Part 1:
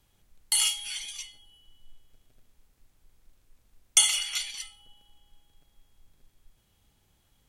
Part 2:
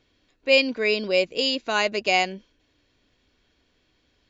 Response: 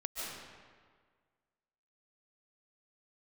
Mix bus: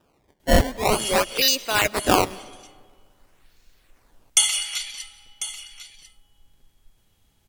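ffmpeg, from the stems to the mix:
-filter_complex "[0:a]adelay=400,volume=1.5dB,asplit=3[a][b][c];[b]volume=-15.5dB[d];[c]volume=-12.5dB[e];[1:a]aemphasis=mode=production:type=riaa,bandreject=f=3.2k:w=7,acrusher=samples=20:mix=1:aa=0.000001:lfo=1:lforange=32:lforate=0.48,volume=0dB,asplit=3[f][g][h];[g]volume=-22.5dB[i];[h]apad=whole_len=347881[j];[a][j]sidechaincompress=threshold=-31dB:ratio=8:attack=16:release=209[k];[2:a]atrim=start_sample=2205[l];[d][i]amix=inputs=2:normalize=0[m];[m][l]afir=irnorm=-1:irlink=0[n];[e]aecho=0:1:1046:1[o];[k][f][n][o]amix=inputs=4:normalize=0"

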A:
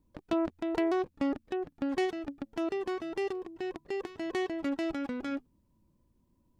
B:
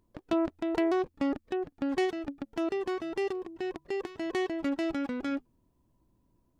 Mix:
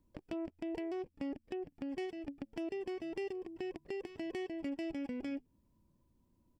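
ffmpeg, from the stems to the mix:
-filter_complex "[0:a]acompressor=threshold=-39dB:ratio=6,volume=-3dB[a];[1:a]adelay=0.4,volume=-12dB[b];[a][b]amix=inputs=2:normalize=0,alimiter=level_in=6.5dB:limit=-24dB:level=0:latency=1:release=496,volume=-6.5dB"

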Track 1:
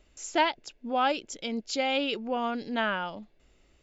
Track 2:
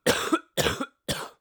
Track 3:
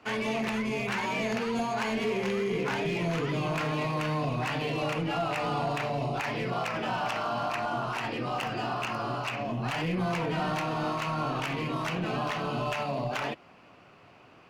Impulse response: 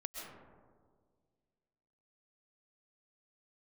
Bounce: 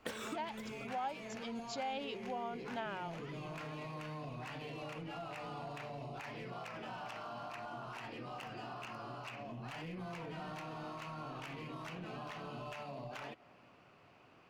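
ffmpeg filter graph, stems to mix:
-filter_complex "[0:a]equalizer=f=790:t=o:w=0.56:g=10,dynaudnorm=f=280:g=3:m=11.5dB,volume=-14.5dB,asplit=2[a][b];[1:a]acompressor=threshold=-33dB:ratio=6,volume=1.5dB[c];[2:a]volume=-8.5dB,asplit=2[d][e];[e]volume=-21.5dB[f];[b]apad=whole_len=61830[g];[c][g]sidechaincompress=threshold=-39dB:ratio=8:attack=16:release=1180[h];[3:a]atrim=start_sample=2205[i];[f][i]afir=irnorm=-1:irlink=0[j];[a][h][d][j]amix=inputs=4:normalize=0,acompressor=threshold=-48dB:ratio=2"

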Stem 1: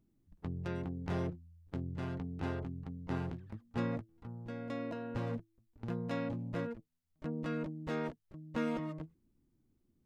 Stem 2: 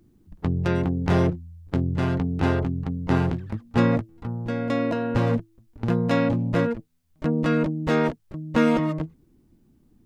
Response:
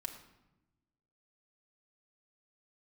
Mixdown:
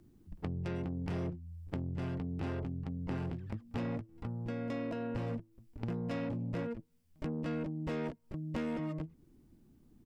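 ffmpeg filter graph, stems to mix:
-filter_complex "[0:a]volume=-3dB,asplit=2[a][b];[b]volume=-22.5dB[c];[1:a]asoftclip=type=tanh:threshold=-18dB,adelay=0.4,volume=-3.5dB[d];[2:a]atrim=start_sample=2205[e];[c][e]afir=irnorm=-1:irlink=0[f];[a][d][f]amix=inputs=3:normalize=0,acompressor=threshold=-38dB:ratio=3"

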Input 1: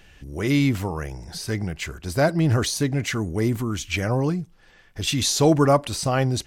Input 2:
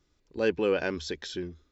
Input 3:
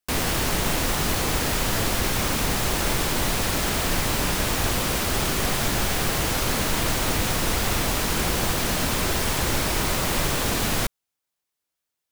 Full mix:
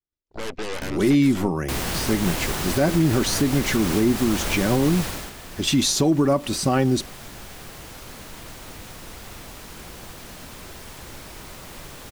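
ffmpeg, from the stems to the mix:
-filter_complex "[0:a]equalizer=f=280:w=2.3:g=13.5,aecho=1:1:5.3:0.49,adelay=600,volume=0.5dB[a];[1:a]agate=range=-33dB:threshold=-56dB:ratio=3:detection=peak,alimiter=limit=-23dB:level=0:latency=1:release=55,aeval=exprs='0.0708*(cos(1*acos(clip(val(0)/0.0708,-1,1)))-cos(1*PI/2))+0.0355*(cos(8*acos(clip(val(0)/0.0708,-1,1)))-cos(8*PI/2))':c=same,volume=-2.5dB[b];[2:a]adelay=1600,volume=-3dB,afade=t=out:st=4.96:d=0.37:silence=0.223872[c];[a][b][c]amix=inputs=3:normalize=0,alimiter=limit=-10.5dB:level=0:latency=1:release=139"

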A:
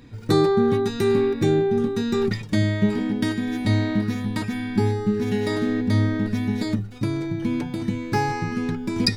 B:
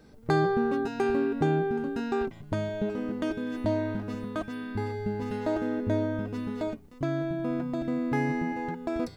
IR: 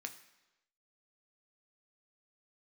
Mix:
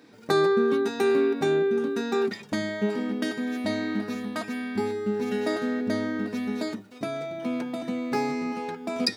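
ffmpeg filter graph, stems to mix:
-filter_complex "[0:a]highpass=240,volume=-4dB[a];[1:a]volume=-3dB,asplit=2[b][c];[c]volume=-3.5dB[d];[2:a]atrim=start_sample=2205[e];[d][e]afir=irnorm=-1:irlink=0[f];[a][b][f]amix=inputs=3:normalize=0,highpass=190"

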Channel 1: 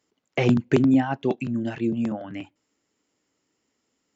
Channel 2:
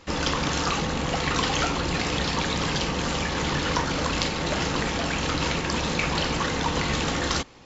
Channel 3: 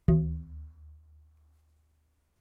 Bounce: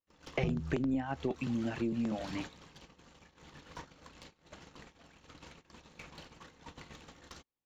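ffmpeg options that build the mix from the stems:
-filter_complex "[0:a]volume=-4.5dB,asplit=2[a][b];[1:a]bandreject=f=5k:w=19,aeval=exprs='clip(val(0),-1,0.0841)':c=same,volume=-16.5dB[c];[2:a]adelay=350,volume=-1dB[d];[b]apad=whole_len=337550[e];[c][e]sidechaincompress=threshold=-36dB:ratio=8:attack=16:release=259[f];[a][f][d]amix=inputs=3:normalize=0,agate=range=-31dB:threshold=-40dB:ratio=16:detection=peak,aeval=exprs='0.355*(cos(1*acos(clip(val(0)/0.355,-1,1)))-cos(1*PI/2))+0.0631*(cos(2*acos(clip(val(0)/0.355,-1,1)))-cos(2*PI/2))':c=same,acompressor=threshold=-30dB:ratio=5"

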